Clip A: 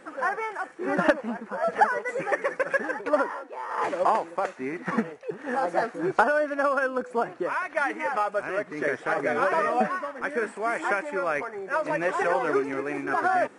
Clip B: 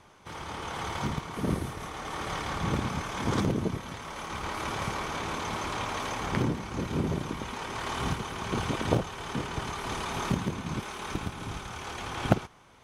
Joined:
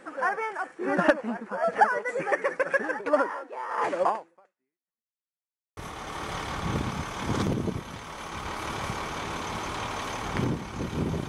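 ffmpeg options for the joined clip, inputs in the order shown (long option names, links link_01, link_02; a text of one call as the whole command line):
ffmpeg -i cue0.wav -i cue1.wav -filter_complex "[0:a]apad=whole_dur=11.28,atrim=end=11.28,asplit=2[link_01][link_02];[link_01]atrim=end=5.2,asetpts=PTS-STARTPTS,afade=type=out:start_time=4.05:duration=1.15:curve=exp[link_03];[link_02]atrim=start=5.2:end=5.77,asetpts=PTS-STARTPTS,volume=0[link_04];[1:a]atrim=start=1.75:end=7.26,asetpts=PTS-STARTPTS,afade=type=in:duration=0.004:curve=hsin[link_05];[link_03][link_04][link_05]concat=n=3:v=0:a=1" out.wav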